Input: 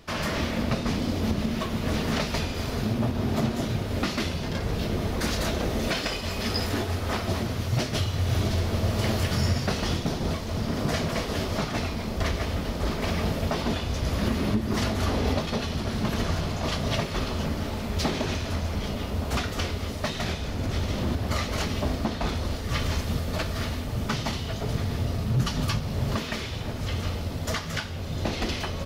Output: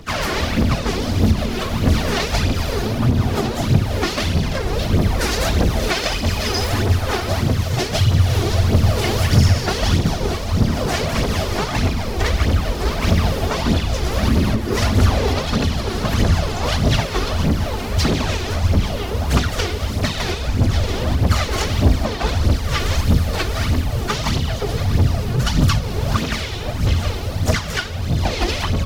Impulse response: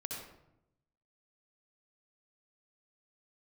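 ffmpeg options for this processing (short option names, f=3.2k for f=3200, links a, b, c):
-filter_complex "[0:a]aphaser=in_gain=1:out_gain=1:delay=2.9:decay=0.62:speed=1.6:type=triangular,acrossover=split=150|3000[a][b][c];[b]acompressor=threshold=-22dB:ratio=6[d];[a][d][c]amix=inputs=3:normalize=0,asplit=3[e][f][g];[f]asetrate=52444,aresample=44100,atempo=0.840896,volume=-10dB[h];[g]asetrate=55563,aresample=44100,atempo=0.793701,volume=-14dB[i];[e][h][i]amix=inputs=3:normalize=0,volume=5.5dB"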